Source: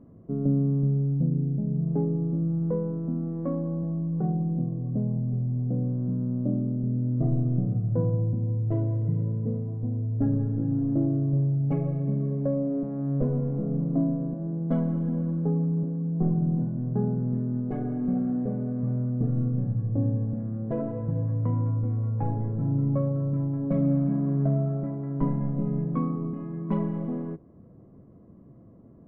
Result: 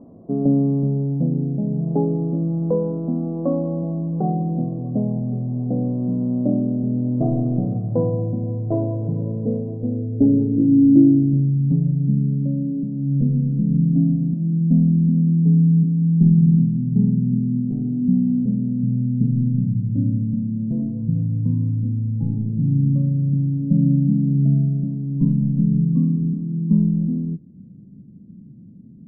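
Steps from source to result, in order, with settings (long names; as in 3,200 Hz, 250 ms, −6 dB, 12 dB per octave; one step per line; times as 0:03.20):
parametric band 240 Hz +5 dB 0.88 octaves
low-pass filter sweep 770 Hz → 180 Hz, 0:09.14–0:11.87
low-shelf EQ 170 Hz −7.5 dB
level +5.5 dB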